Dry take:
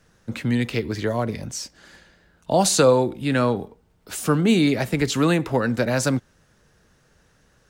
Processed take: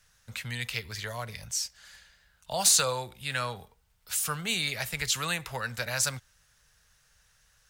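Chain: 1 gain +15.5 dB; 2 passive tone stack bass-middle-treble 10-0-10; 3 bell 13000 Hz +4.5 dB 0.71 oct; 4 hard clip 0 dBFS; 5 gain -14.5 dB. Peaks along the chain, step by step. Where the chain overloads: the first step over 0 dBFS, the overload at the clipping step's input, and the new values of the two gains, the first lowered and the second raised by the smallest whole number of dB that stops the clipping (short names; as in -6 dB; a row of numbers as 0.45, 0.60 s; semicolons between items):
+10.0, +6.0, +7.5, 0.0, -14.5 dBFS; step 1, 7.5 dB; step 1 +7.5 dB, step 5 -6.5 dB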